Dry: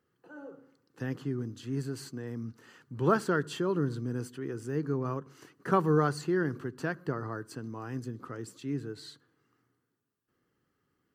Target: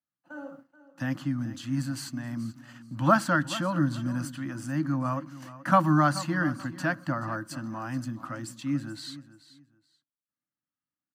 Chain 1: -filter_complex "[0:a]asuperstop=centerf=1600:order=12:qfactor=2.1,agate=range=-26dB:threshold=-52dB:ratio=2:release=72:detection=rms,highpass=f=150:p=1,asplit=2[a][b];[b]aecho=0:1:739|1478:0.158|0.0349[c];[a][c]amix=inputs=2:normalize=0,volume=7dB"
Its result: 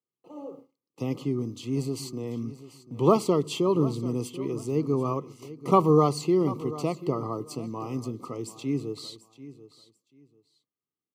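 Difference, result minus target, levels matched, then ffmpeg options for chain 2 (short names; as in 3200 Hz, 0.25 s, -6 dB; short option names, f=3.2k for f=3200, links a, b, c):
2000 Hz band -18.0 dB; echo 0.309 s late
-filter_complex "[0:a]asuperstop=centerf=420:order=12:qfactor=2.1,agate=range=-26dB:threshold=-52dB:ratio=2:release=72:detection=rms,highpass=f=150:p=1,asplit=2[a][b];[b]aecho=0:1:430|860:0.158|0.0349[c];[a][c]amix=inputs=2:normalize=0,volume=7dB"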